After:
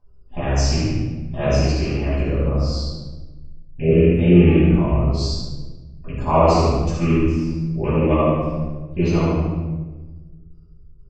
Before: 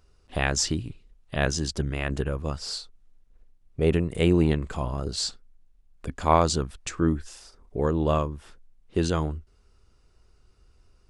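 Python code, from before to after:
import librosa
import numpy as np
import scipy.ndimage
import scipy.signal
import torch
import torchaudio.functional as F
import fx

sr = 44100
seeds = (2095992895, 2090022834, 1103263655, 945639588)

p1 = fx.rattle_buzz(x, sr, strikes_db=-27.0, level_db=-14.0)
p2 = fx.spec_gate(p1, sr, threshold_db=-25, keep='strong')
p3 = scipy.signal.sosfilt(scipy.signal.butter(4, 5800.0, 'lowpass', fs=sr, output='sos'), p2)
p4 = fx.band_shelf(p3, sr, hz=2300.0, db=-10.5, octaves=1.7)
p5 = p4 + fx.echo_feedback(p4, sr, ms=74, feedback_pct=40, wet_db=-6, dry=0)
p6 = fx.room_shoebox(p5, sr, seeds[0], volume_m3=770.0, walls='mixed', distance_m=8.7)
y = p6 * 10.0 ** (-9.5 / 20.0)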